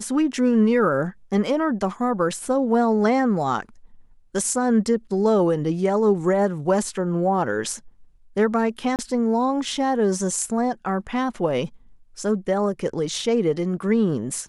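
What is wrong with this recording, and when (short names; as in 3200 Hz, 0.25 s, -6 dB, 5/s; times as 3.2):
8.96–8.99 gap 28 ms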